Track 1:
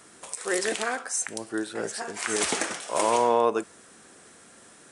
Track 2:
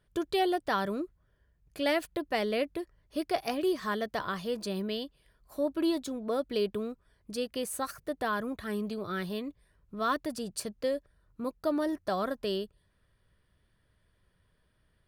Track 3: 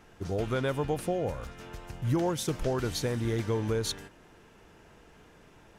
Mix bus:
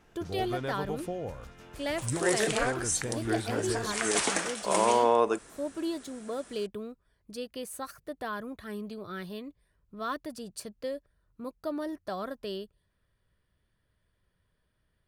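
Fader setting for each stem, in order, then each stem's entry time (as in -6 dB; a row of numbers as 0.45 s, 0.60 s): -1.5 dB, -4.5 dB, -5.5 dB; 1.75 s, 0.00 s, 0.00 s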